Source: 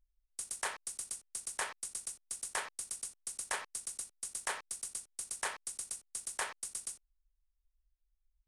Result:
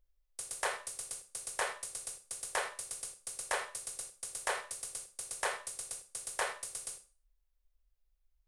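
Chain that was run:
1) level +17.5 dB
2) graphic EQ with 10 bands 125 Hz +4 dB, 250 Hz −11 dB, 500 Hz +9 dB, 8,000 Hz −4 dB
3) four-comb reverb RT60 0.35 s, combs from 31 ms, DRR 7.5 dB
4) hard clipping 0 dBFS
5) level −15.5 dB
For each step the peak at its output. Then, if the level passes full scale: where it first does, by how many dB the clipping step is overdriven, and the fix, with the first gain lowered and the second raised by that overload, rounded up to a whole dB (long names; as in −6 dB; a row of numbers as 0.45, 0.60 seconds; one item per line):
−3.5, −3.5, −3.5, −3.5, −19.0 dBFS
no step passes full scale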